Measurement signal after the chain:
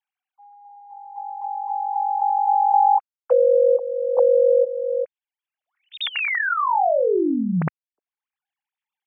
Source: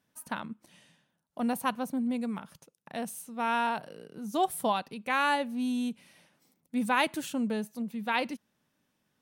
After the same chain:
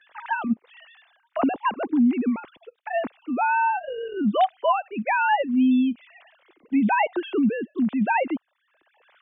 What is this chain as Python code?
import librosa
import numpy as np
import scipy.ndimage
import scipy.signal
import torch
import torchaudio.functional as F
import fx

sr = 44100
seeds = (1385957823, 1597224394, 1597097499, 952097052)

y = fx.sine_speech(x, sr)
y = fx.band_squash(y, sr, depth_pct=70)
y = y * librosa.db_to_amplitude(9.0)